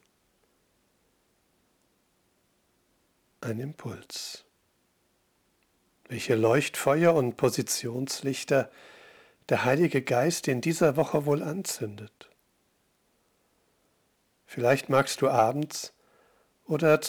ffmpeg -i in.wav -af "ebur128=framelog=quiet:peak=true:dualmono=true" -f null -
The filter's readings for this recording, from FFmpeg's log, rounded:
Integrated loudness:
  I:         -23.8 LUFS
  Threshold: -36.8 LUFS
Loudness range:
  LRA:        14.4 LU
  Threshold: -46.6 LUFS
  LRA low:   -38.0 LUFS
  LRA high:  -23.6 LUFS
True peak:
  Peak:       -9.3 dBFS